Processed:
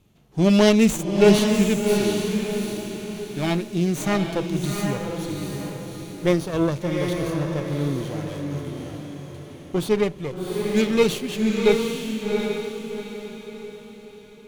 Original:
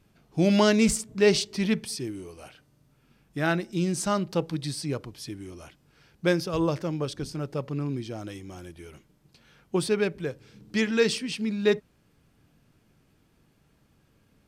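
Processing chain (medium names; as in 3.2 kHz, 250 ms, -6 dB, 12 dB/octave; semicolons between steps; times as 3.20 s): comb filter that takes the minimum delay 0.3 ms; echo that smears into a reverb 754 ms, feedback 41%, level -4 dB; harmonic-percussive split harmonic +5 dB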